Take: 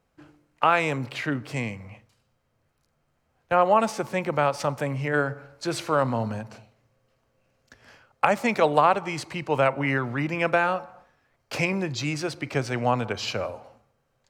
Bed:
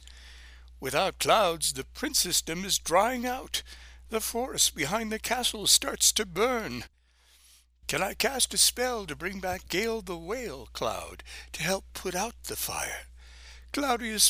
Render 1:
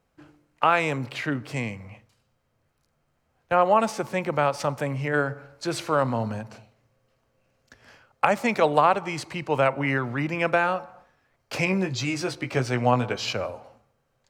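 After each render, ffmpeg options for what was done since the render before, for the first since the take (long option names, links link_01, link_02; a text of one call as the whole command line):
ffmpeg -i in.wav -filter_complex "[0:a]asettb=1/sr,asplit=3[link_01][link_02][link_03];[link_01]atrim=end=11.654[link_04];[link_02]atrim=start=11.65:end=13.33,asetpts=PTS-STARTPTS,afade=type=in:duration=0.004:curve=qsin,afade=type=out:start_time=1.676:duration=0.004:curve=qsin,asplit=2[link_05][link_06];[link_06]adelay=16,volume=-5dB[link_07];[link_05][link_07]amix=inputs=2:normalize=0,atrim=end_sample=74088[link_08];[link_03]atrim=start=13.326[link_09];[link_04][link_08]acrossfade=duration=0.004:curve1=hsin:curve2=qsin[link_10];[link_10][link_09]acrossfade=duration=0.004:curve1=qsin:curve2=hsin" out.wav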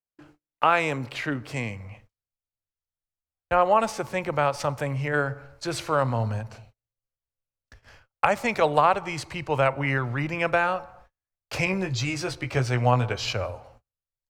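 ffmpeg -i in.wav -af "agate=range=-33dB:threshold=-54dB:ratio=16:detection=peak,asubboost=boost=8.5:cutoff=70" out.wav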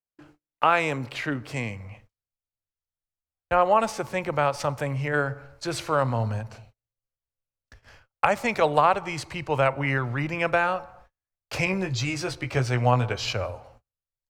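ffmpeg -i in.wav -af anull out.wav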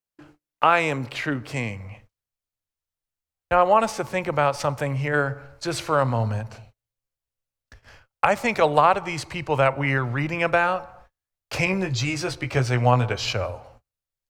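ffmpeg -i in.wav -af "volume=2.5dB,alimiter=limit=-2dB:level=0:latency=1" out.wav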